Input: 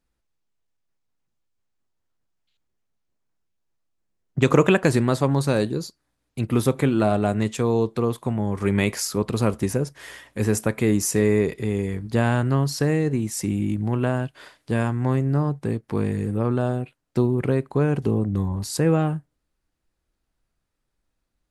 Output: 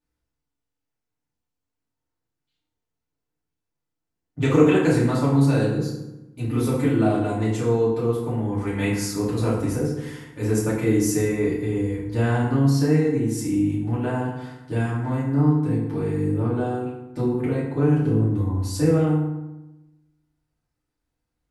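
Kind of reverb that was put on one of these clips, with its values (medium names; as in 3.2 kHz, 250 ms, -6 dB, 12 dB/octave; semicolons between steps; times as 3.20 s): FDN reverb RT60 0.98 s, low-frequency decay 1.3×, high-frequency decay 0.6×, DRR -8.5 dB; trim -11 dB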